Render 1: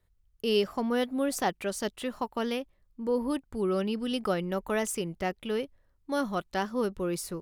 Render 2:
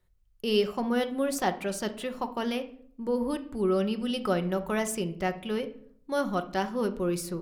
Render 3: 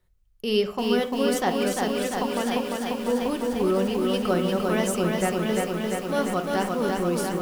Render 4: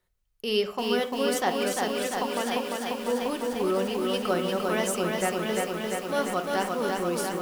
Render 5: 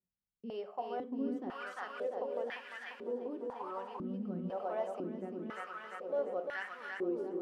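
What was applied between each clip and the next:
reverb RT60 0.60 s, pre-delay 5 ms, DRR 7.5 dB
lo-fi delay 0.347 s, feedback 80%, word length 8-bit, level -3 dB; gain +2 dB
low shelf 230 Hz -11.5 dB
stepped band-pass 2 Hz 200–1800 Hz; gain -2.5 dB

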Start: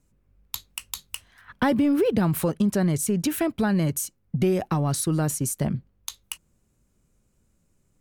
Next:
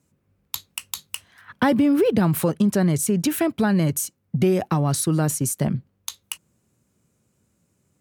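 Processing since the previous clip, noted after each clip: HPF 84 Hz 24 dB/oct; gain +3 dB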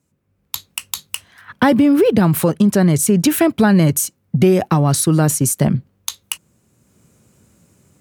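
AGC gain up to 14.5 dB; gain -1 dB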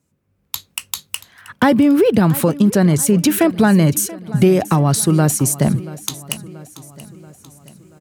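feedback echo 0.682 s, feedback 54%, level -18.5 dB

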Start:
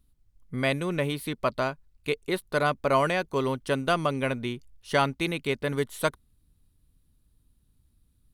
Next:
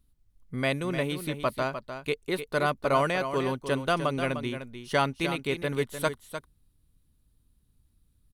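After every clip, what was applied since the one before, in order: echo 0.302 s -9.5 dB; gain -1.5 dB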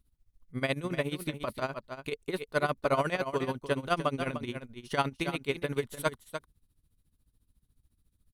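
tremolo 14 Hz, depth 82%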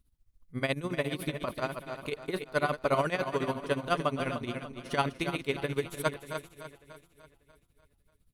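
regenerating reverse delay 0.295 s, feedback 52%, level -11.5 dB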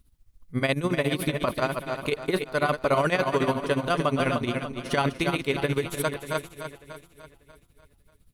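limiter -21 dBFS, peak gain reduction 8 dB; gain +8.5 dB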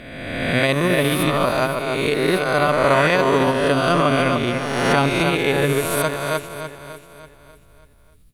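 spectral swells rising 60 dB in 1.54 s; gain +3.5 dB

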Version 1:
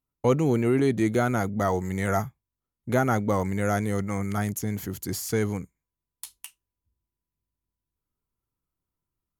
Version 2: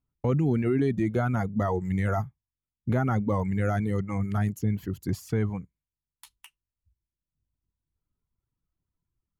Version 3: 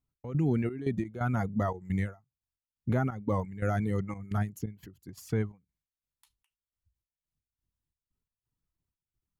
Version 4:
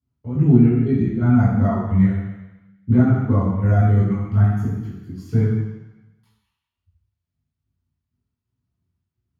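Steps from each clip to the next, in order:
reverb removal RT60 1.4 s; tone controls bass +9 dB, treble -12 dB; limiter -16 dBFS, peak gain reduction 7.5 dB; gain -1 dB
step gate "x.xx.x.xxx.xx." 87 bpm -12 dB; ending taper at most 220 dB/s; gain -2.5 dB
reverb RT60 1.0 s, pre-delay 3 ms, DRR -14 dB; gain -16 dB

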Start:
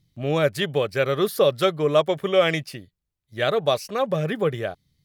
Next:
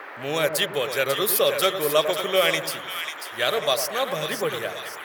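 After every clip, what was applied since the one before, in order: band noise 280–1900 Hz -39 dBFS; RIAA curve recording; split-band echo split 1100 Hz, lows 0.1 s, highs 0.543 s, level -8 dB; gain -1 dB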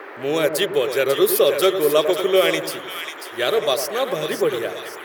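bell 370 Hz +11.5 dB 0.79 oct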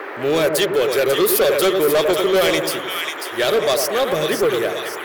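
soft clip -18.5 dBFS, distortion -9 dB; gain +6.5 dB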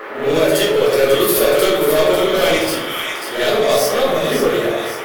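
reverse echo 69 ms -8 dB; shoebox room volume 130 m³, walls mixed, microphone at 1.4 m; gain -3.5 dB

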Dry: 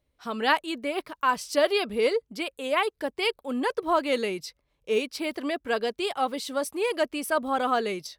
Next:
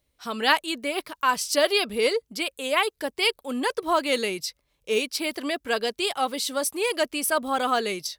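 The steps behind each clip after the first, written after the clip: high shelf 2900 Hz +10.5 dB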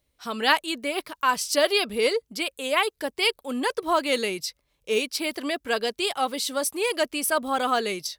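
nothing audible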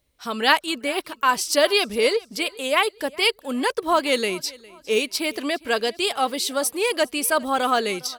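feedback echo 0.407 s, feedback 38%, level -22.5 dB; gain +3 dB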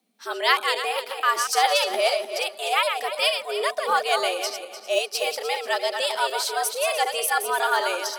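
regenerating reverse delay 0.15 s, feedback 48%, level -6 dB; frequency shift +170 Hz; gain -2.5 dB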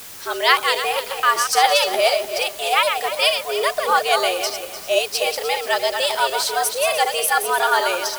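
added noise white -42 dBFS; gain +4.5 dB

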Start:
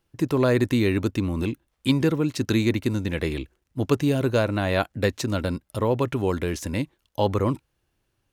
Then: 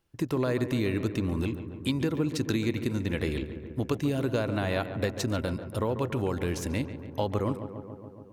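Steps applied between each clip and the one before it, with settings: compressor, threshold -22 dBFS, peak gain reduction 7.5 dB; darkening echo 0.141 s, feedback 76%, low-pass 2300 Hz, level -11 dB; gain -2.5 dB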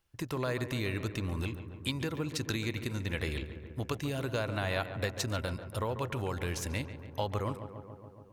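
bell 270 Hz -9.5 dB 2.1 oct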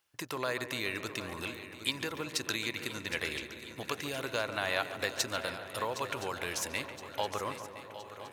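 HPF 780 Hz 6 dB/oct; on a send: swung echo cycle 1.018 s, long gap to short 3:1, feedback 47%, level -13 dB; on the sum: gain +4 dB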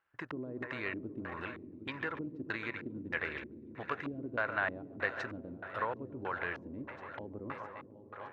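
LFO low-pass square 1.6 Hz 280–1600 Hz; Doppler distortion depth 0.13 ms; gain -3 dB

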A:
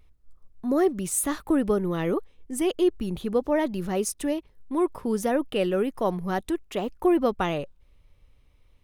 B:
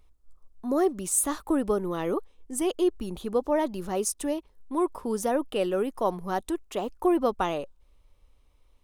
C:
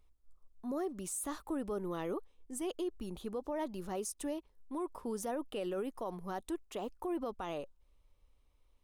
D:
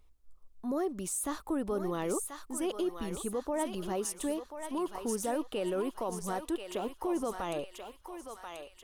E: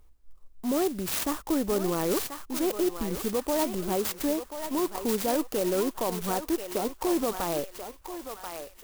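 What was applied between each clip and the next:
graphic EQ 125/1000/2000/8000 Hz -11/+4/-5/+4 dB; gain -1.5 dB
limiter -22 dBFS, peak gain reduction 10 dB; gain -8 dB
thinning echo 1.035 s, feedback 53%, high-pass 990 Hz, level -4 dB; gain +4.5 dB
clock jitter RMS 0.087 ms; gain +6 dB

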